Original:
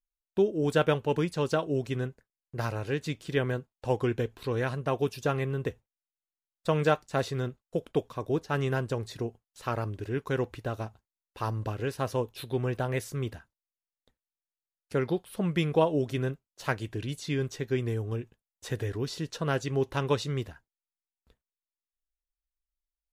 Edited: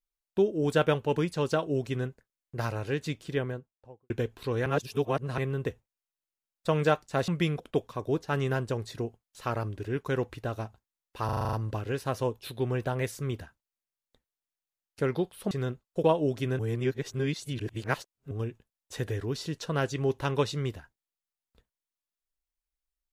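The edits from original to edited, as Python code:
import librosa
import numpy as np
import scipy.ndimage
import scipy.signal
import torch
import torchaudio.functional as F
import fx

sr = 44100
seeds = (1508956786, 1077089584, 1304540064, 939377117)

y = fx.studio_fade_out(x, sr, start_s=3.07, length_s=1.03)
y = fx.edit(y, sr, fx.reverse_span(start_s=4.66, length_s=0.72),
    fx.swap(start_s=7.28, length_s=0.53, other_s=15.44, other_length_s=0.32),
    fx.stutter(start_s=11.46, slice_s=0.04, count=8),
    fx.reverse_span(start_s=16.31, length_s=1.72), tone=tone)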